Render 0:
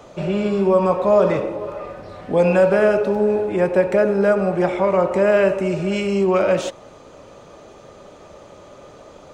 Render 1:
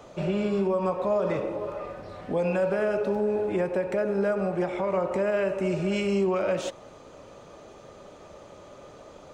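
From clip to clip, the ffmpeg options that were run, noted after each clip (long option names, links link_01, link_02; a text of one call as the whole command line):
ffmpeg -i in.wav -af "alimiter=limit=-13dB:level=0:latency=1:release=200,volume=-4.5dB" out.wav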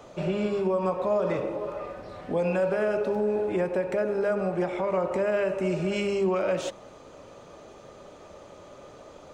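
ffmpeg -i in.wav -af "bandreject=frequency=50:width_type=h:width=6,bandreject=frequency=100:width_type=h:width=6,bandreject=frequency=150:width_type=h:width=6,bandreject=frequency=200:width_type=h:width=6" out.wav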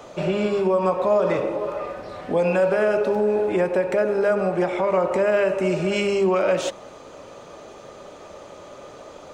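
ffmpeg -i in.wav -af "lowshelf=frequency=230:gain=-6,volume=7dB" out.wav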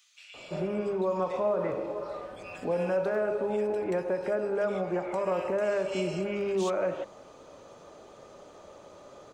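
ffmpeg -i in.wav -filter_complex "[0:a]acrossover=split=2300[link_01][link_02];[link_01]adelay=340[link_03];[link_03][link_02]amix=inputs=2:normalize=0,volume=-8.5dB" out.wav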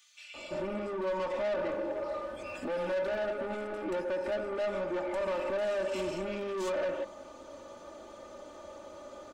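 ffmpeg -i in.wav -af "asoftclip=type=tanh:threshold=-32.5dB,aecho=1:1:3.4:0.72" out.wav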